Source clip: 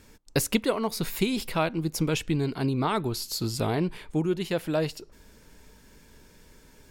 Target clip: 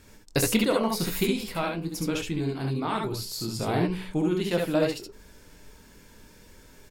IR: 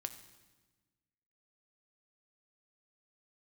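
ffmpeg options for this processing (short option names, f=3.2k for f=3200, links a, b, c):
-filter_complex "[0:a]bandreject=f=62.18:t=h:w=4,bandreject=f=124.36:t=h:w=4,bandreject=f=186.54:t=h:w=4,bandreject=f=248.72:t=h:w=4,bandreject=f=310.9:t=h:w=4,bandreject=f=373.08:t=h:w=4,bandreject=f=435.26:t=h:w=4,bandreject=f=497.44:t=h:w=4,asplit=3[a][b][c];[a]afade=t=out:st=1.24:d=0.02[d];[b]flanger=delay=9.6:depth=5.1:regen=-69:speed=1:shape=triangular,afade=t=in:st=1.24:d=0.02,afade=t=out:st=3.66:d=0.02[e];[c]afade=t=in:st=3.66:d=0.02[f];[d][e][f]amix=inputs=3:normalize=0,aecho=1:1:23|66|76:0.376|0.631|0.501"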